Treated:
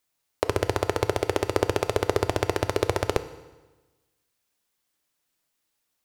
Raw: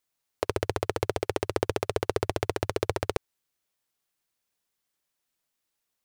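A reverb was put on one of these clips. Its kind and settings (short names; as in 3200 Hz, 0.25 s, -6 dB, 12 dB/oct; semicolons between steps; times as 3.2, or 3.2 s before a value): FDN reverb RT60 1.2 s, low-frequency decay 1.1×, high-frequency decay 0.9×, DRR 11 dB; gain +4 dB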